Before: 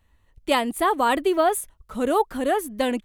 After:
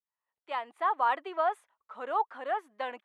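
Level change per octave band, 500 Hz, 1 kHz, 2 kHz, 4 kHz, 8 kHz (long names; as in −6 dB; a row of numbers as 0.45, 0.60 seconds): −13.0 dB, −6.0 dB, −8.5 dB, −16.5 dB, below −30 dB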